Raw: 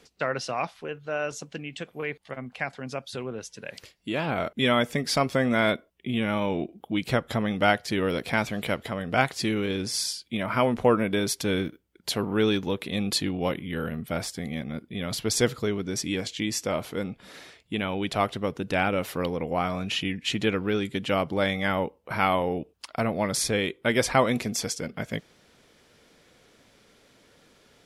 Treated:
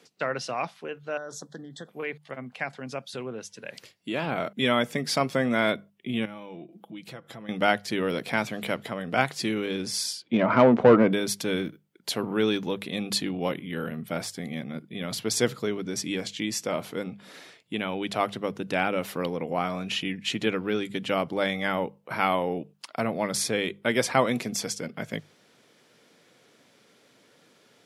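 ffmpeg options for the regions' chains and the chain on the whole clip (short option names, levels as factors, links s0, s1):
-filter_complex "[0:a]asettb=1/sr,asplit=3[s0][s1][s2];[s0]atrim=end=1.174[s3];[s1]atrim=start=1.17:end=1.89,asetpts=PTS-STARTPTS,afade=t=in:d=0.004:c=qsin,afade=t=out:st=0.716:d=0.004:c=qsin,acompressor=threshold=0.0251:ratio=6:attack=3.2:release=140:knee=1:detection=peak,asuperstop=centerf=2500:order=12:qfactor=1.8[s4];[s2]atrim=start=1.886[s5];[s3][s4]acrossfade=d=0.004:c1=hsin:c2=qsin[s6];[s6][s5]acrossfade=d=0.004:c1=qsin:c2=hsin,asettb=1/sr,asplit=3[s7][s8][s9];[s7]atrim=end=6.254[s10];[s8]atrim=start=6.25:end=7.49,asetpts=PTS-STARTPTS,afade=t=in:d=0.004:c=qsin,afade=t=out:st=1.236:d=0.004:c=qsin,acompressor=threshold=0.00794:ratio=3:attack=3.2:release=140:knee=1:detection=peak,aecho=1:1:6:0.37,atrim=end_sample=54684[s11];[s9]atrim=start=7.486[s12];[s10][s11]acrossfade=d=0.004:c1=hsin:c2=qsin[s13];[s13][s12]acrossfade=d=0.004:c1=qsin:c2=hsin,asettb=1/sr,asplit=3[s14][s15][s16];[s14]atrim=end=10.224[s17];[s15]atrim=start=10.22:end=11.13,asetpts=PTS-STARTPTS,afade=t=in:d=0.004:c=qsin,afade=t=out:st=0.906:d=0.004:c=qsin,lowpass=6500,tiltshelf=f=730:g=7,asplit=2[s18][s19];[s19]highpass=f=720:p=1,volume=8.91,asoftclip=type=tanh:threshold=0.562[s20];[s18][s20]amix=inputs=2:normalize=0,lowpass=f=1600:p=1,volume=0.501[s21];[s16]atrim=start=11.126[s22];[s17][s21]acrossfade=d=0.004:c1=hsin:c2=qsin[s23];[s23][s22]acrossfade=d=0.004:c1=qsin:c2=hsin,highpass=f=120:w=0.5412,highpass=f=120:w=1.3066,bandreject=f=50:t=h:w=6,bandreject=f=100:t=h:w=6,bandreject=f=150:t=h:w=6,bandreject=f=200:t=h:w=6,volume=0.891"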